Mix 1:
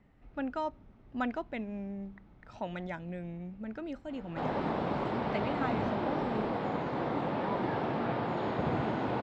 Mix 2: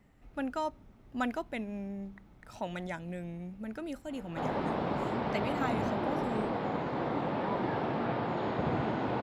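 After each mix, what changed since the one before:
speech: remove air absorption 160 m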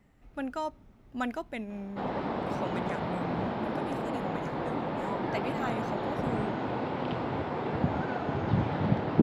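background: entry -2.40 s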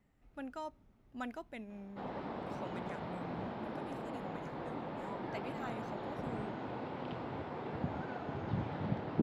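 speech -9.5 dB; background -9.5 dB

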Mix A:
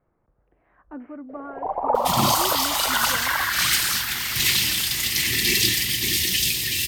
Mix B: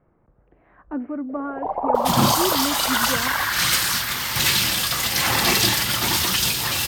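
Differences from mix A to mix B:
speech +6.0 dB; second sound: remove Chebyshev band-stop 420–1800 Hz, order 5; master: add bell 190 Hz +4 dB 2.4 oct

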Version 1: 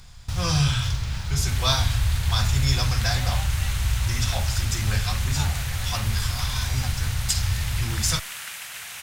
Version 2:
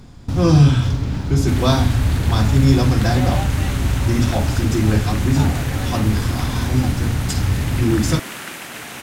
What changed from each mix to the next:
speech -4.5 dB; master: remove passive tone stack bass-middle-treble 10-0-10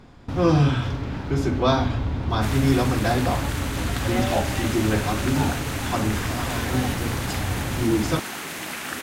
speech: add tone controls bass -9 dB, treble -12 dB; background: entry +0.95 s

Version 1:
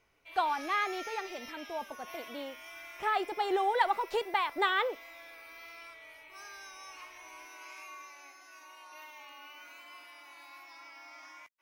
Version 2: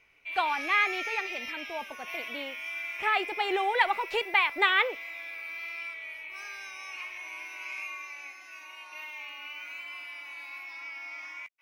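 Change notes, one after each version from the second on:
master: add bell 2400 Hz +14.5 dB 0.75 oct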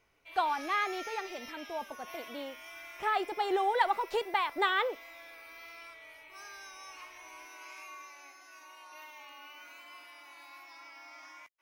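master: add bell 2400 Hz -14.5 dB 0.75 oct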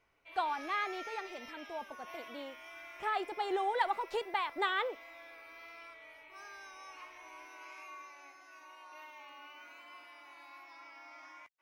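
speech -4.0 dB; background: add high shelf 4000 Hz -11.5 dB

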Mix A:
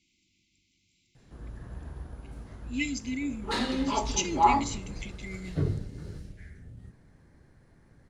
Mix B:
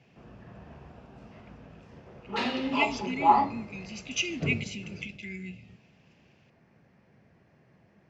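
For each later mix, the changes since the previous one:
background: entry -1.15 s; master: add speaker cabinet 140–5500 Hz, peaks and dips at 200 Hz +3 dB, 300 Hz -5 dB, 680 Hz +5 dB, 1600 Hz -3 dB, 2600 Hz +10 dB, 4000 Hz -6 dB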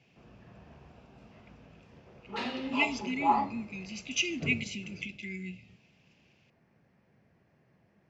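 background -5.5 dB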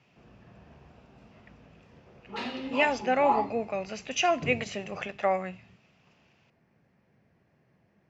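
speech: remove brick-wall FIR band-stop 370–2000 Hz

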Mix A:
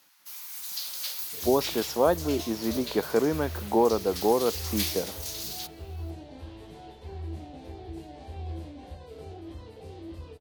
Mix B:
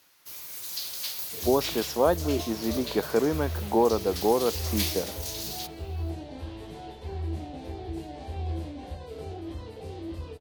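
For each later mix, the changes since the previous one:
first sound: remove Chebyshev high-pass 780 Hz, order 5; second sound +4.5 dB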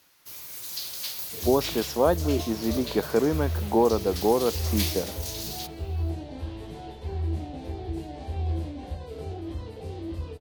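master: add low shelf 250 Hz +4.5 dB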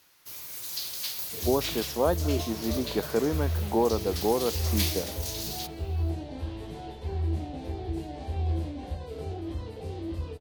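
speech -3.5 dB

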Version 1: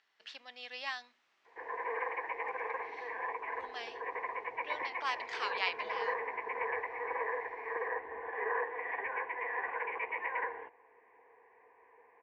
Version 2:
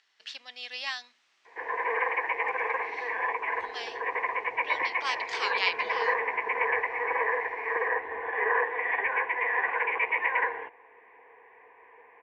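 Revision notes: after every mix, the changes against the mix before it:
background +6.0 dB; master: add high shelf 2400 Hz +12 dB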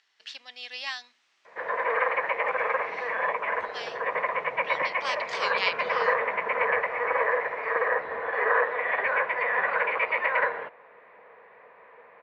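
background: remove fixed phaser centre 880 Hz, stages 8

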